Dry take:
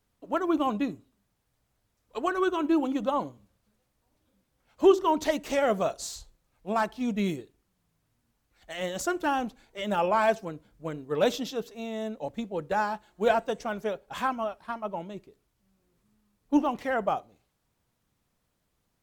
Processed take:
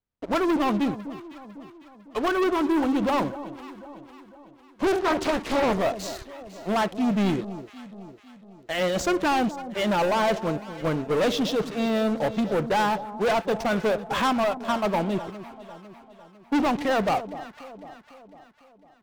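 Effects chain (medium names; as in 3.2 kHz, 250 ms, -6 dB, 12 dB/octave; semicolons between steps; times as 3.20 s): distance through air 120 m; gain riding within 4 dB 0.5 s; waveshaping leveller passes 5; echo whose repeats swap between lows and highs 251 ms, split 1 kHz, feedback 68%, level -12.5 dB; 4.86–5.79 s: loudspeaker Doppler distortion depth 0.92 ms; trim -7.5 dB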